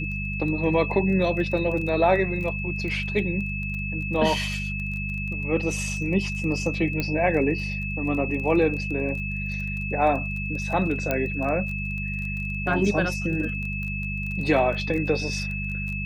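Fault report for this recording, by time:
surface crackle 18 per second −32 dBFS
mains hum 50 Hz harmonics 4 −31 dBFS
whistle 2,600 Hz −31 dBFS
0:07.00: click −13 dBFS
0:11.11: click −10 dBFS

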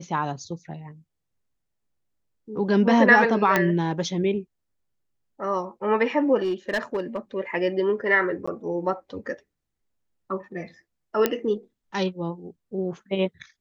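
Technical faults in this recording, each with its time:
0:03.56: click −6 dBFS
0:06.42–0:07.18: clipping −20.5 dBFS
0:08.46–0:08.47: drop-out 15 ms
0:11.26: click −6 dBFS

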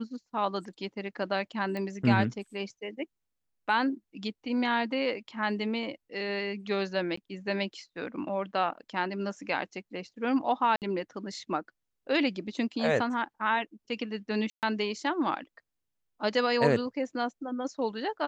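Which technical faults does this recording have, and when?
0:01.77: click −23 dBFS
0:07.16–0:07.17: drop-out 14 ms
0:10.76–0:10.82: drop-out 58 ms
0:14.50–0:14.63: drop-out 128 ms

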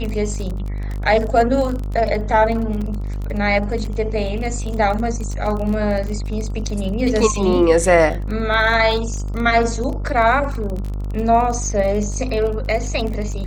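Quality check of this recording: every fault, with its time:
mains buzz 50 Hz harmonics 28 −24 dBFS
surface crackle 27 per second −25 dBFS
0:02.81: drop-out 3.3 ms

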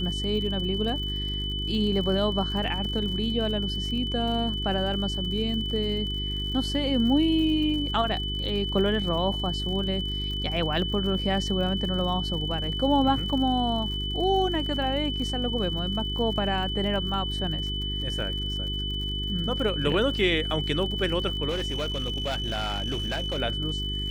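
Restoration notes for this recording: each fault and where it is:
surface crackle 69 per second −35 dBFS
mains hum 50 Hz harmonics 8 −32 dBFS
whistle 3,000 Hz −31 dBFS
0:21.49–0:23.39: clipping −24.5 dBFS

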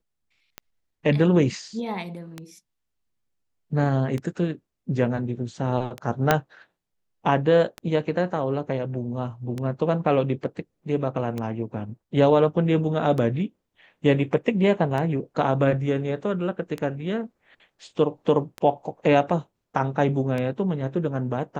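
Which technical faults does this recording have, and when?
scratch tick 33 1/3 rpm −17 dBFS
0:06.31: click −3 dBFS

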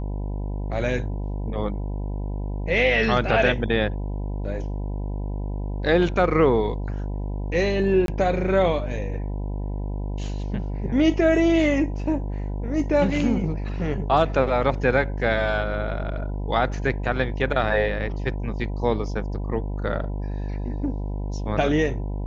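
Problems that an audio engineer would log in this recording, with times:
mains buzz 50 Hz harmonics 20 −28 dBFS
0:08.06–0:08.08: drop-out 22 ms

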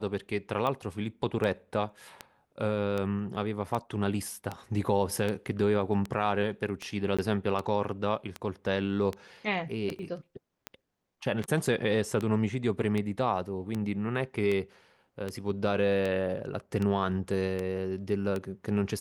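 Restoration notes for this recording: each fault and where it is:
scratch tick 78 rpm −19 dBFS
0:07.17–0:07.19: drop-out 16 ms
0:09.99: drop-out 2.2 ms

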